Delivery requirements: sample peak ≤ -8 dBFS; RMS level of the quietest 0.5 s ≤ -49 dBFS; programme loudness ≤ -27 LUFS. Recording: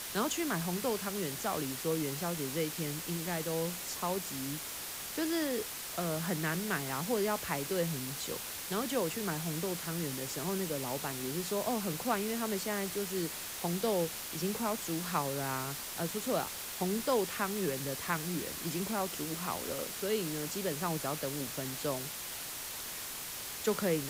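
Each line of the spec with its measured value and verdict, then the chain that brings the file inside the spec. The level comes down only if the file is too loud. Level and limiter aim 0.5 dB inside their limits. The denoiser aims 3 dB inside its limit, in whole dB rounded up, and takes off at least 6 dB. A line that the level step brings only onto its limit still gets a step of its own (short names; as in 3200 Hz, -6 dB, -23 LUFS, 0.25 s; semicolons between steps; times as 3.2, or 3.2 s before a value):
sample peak -18.5 dBFS: OK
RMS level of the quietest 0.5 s -42 dBFS: fail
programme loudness -34.5 LUFS: OK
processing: denoiser 10 dB, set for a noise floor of -42 dBFS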